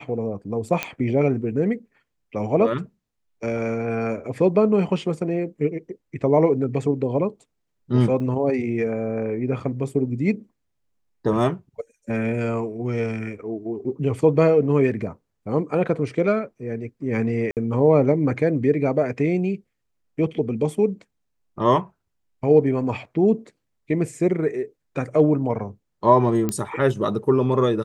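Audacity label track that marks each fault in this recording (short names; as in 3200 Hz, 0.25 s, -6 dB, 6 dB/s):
0.830000	0.830000	pop -8 dBFS
8.200000	8.200000	gap 2.6 ms
17.510000	17.570000	gap 58 ms
26.490000	26.490000	pop -11 dBFS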